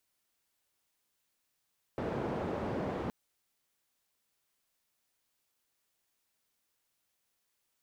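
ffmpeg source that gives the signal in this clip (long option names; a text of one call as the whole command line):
ffmpeg -f lavfi -i "anoisesrc=color=white:duration=1.12:sample_rate=44100:seed=1,highpass=frequency=81,lowpass=frequency=560,volume=-14.6dB" out.wav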